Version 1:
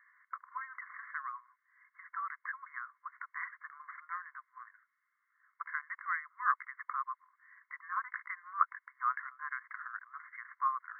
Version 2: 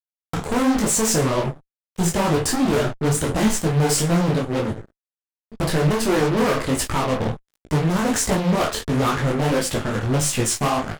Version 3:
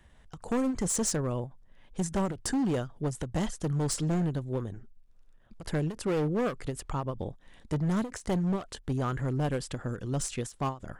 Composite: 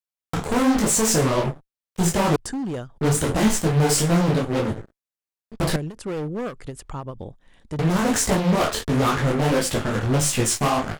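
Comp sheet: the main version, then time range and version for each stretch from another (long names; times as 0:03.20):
2
0:02.36–0:02.98: punch in from 3
0:05.76–0:07.79: punch in from 3
not used: 1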